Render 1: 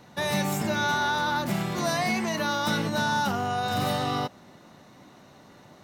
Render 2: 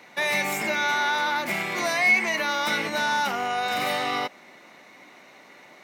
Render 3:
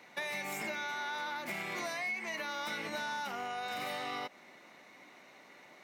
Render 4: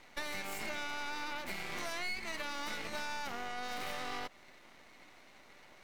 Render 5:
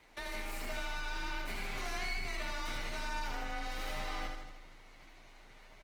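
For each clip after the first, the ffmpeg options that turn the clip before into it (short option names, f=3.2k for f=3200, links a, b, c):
-filter_complex "[0:a]highpass=330,equalizer=f=2.2k:t=o:w=0.45:g=14.5,asplit=2[a][b];[b]alimiter=limit=-18.5dB:level=0:latency=1:release=82,volume=-2dB[c];[a][c]amix=inputs=2:normalize=0,volume=-3.5dB"
-af "acompressor=threshold=-28dB:ratio=6,volume=-7dB"
-af "aeval=exprs='max(val(0),0)':c=same,volume=2dB"
-af "aecho=1:1:78|156|234|312|390|468|546|624:0.596|0.351|0.207|0.122|0.0722|0.0426|0.0251|0.0148,afreqshift=27,volume=-2.5dB" -ar 48000 -c:a libopus -b:a 20k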